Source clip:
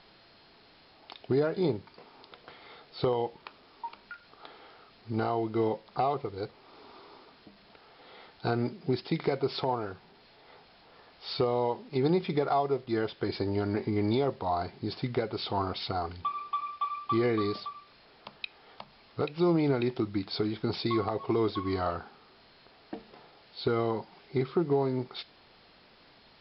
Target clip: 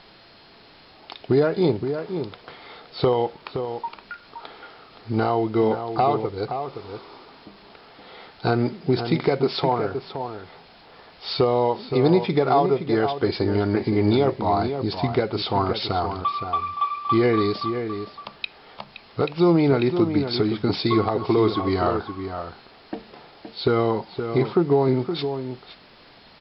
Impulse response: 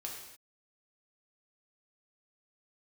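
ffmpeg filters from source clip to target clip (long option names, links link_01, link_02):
-filter_complex "[0:a]asplit=2[link_01][link_02];[link_02]adelay=519,volume=-8dB,highshelf=frequency=4000:gain=-11.7[link_03];[link_01][link_03]amix=inputs=2:normalize=0,volume=8dB"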